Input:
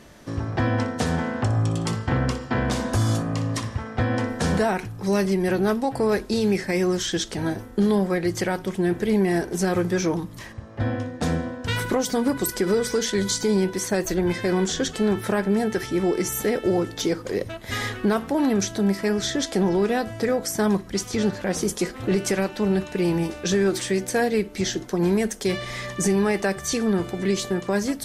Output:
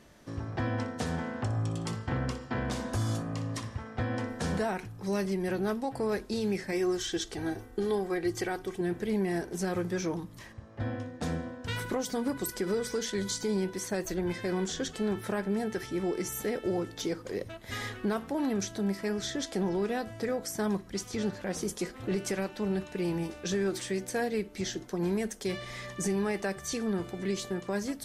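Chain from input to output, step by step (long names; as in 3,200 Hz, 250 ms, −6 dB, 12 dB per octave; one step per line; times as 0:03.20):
0:06.72–0:08.81: comb filter 2.6 ms, depth 57%
level −9 dB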